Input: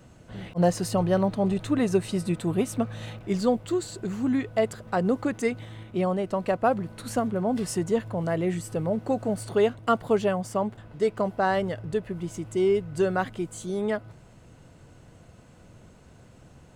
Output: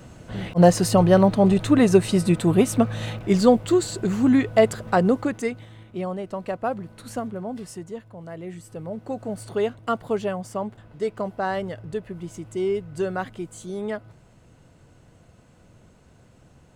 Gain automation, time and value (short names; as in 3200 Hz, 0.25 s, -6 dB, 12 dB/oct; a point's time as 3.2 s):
4.89 s +7.5 dB
5.69 s -3.5 dB
7.24 s -3.5 dB
8.09 s -12 dB
9.46 s -2 dB